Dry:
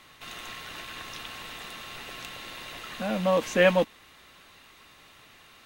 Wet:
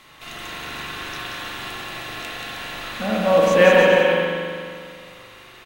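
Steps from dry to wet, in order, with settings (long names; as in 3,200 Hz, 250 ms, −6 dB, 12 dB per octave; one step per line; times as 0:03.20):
bouncing-ball delay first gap 180 ms, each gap 0.75×, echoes 5
spring reverb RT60 2.2 s, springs 41 ms, chirp 65 ms, DRR −2.5 dB
level +3.5 dB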